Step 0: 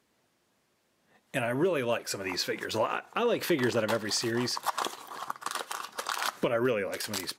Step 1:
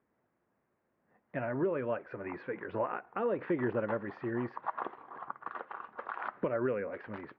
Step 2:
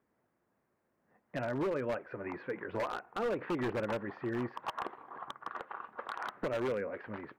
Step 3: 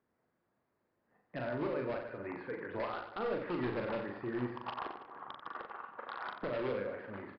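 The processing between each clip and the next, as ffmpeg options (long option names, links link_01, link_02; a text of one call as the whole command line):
ffmpeg -i in.wav -af "lowpass=frequency=2000:width=0.5412,lowpass=frequency=2000:width=1.3066,aemphasis=mode=reproduction:type=75fm,volume=-5dB" out.wav
ffmpeg -i in.wav -af "aeval=exprs='0.0422*(abs(mod(val(0)/0.0422+3,4)-2)-1)':channel_layout=same" out.wav
ffmpeg -i in.wav -filter_complex "[0:a]asplit=2[link_01][link_02];[link_02]aecho=0:1:40|90|152.5|230.6|328.3:0.631|0.398|0.251|0.158|0.1[link_03];[link_01][link_03]amix=inputs=2:normalize=0,aresample=11025,aresample=44100,volume=-4dB" out.wav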